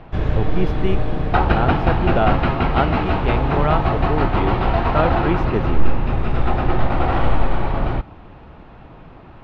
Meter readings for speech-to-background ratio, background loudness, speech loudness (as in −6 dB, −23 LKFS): −4.5 dB, −20.5 LKFS, −25.0 LKFS